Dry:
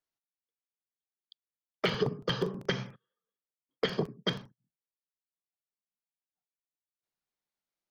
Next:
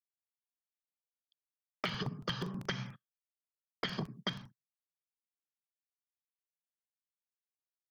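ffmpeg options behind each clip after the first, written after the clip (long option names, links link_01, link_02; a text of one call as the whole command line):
ffmpeg -i in.wav -af "agate=range=-33dB:threshold=-45dB:ratio=3:detection=peak,equalizer=frequency=450:width_type=o:width=0.89:gain=-14,acompressor=threshold=-38dB:ratio=6,volume=4.5dB" out.wav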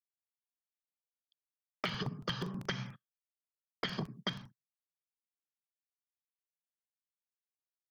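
ffmpeg -i in.wav -af anull out.wav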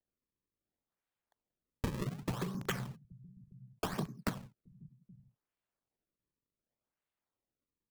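ffmpeg -i in.wav -filter_complex "[0:a]acrossover=split=170[link_01][link_02];[link_01]aecho=1:1:822:0.316[link_03];[link_02]acrusher=samples=35:mix=1:aa=0.000001:lfo=1:lforange=56:lforate=0.67[link_04];[link_03][link_04]amix=inputs=2:normalize=0,volume=1dB" out.wav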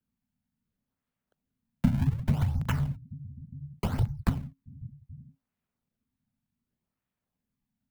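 ffmpeg -i in.wav -af "bass=frequency=250:gain=12,treble=frequency=4000:gain=-15,crystalizer=i=2:c=0,afreqshift=-270,volume=2.5dB" out.wav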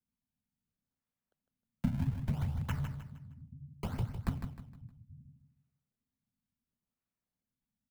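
ffmpeg -i in.wav -af "aecho=1:1:155|310|465|620:0.398|0.143|0.0516|0.0186,volume=-8dB" out.wav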